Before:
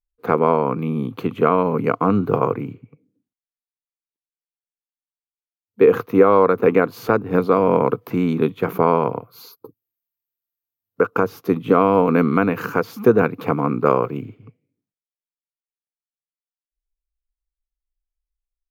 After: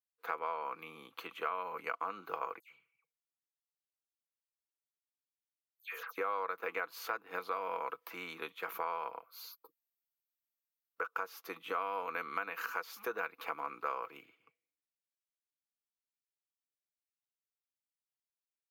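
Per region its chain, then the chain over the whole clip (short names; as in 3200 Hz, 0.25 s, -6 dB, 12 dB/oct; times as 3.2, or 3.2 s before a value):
2.59–6.18 passive tone stack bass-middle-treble 10-0-10 + dispersion lows, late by 0.115 s, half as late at 2700 Hz
whole clip: HPF 1200 Hz 12 dB/oct; comb 6.1 ms, depth 40%; compressor 2.5:1, threshold -28 dBFS; gain -7 dB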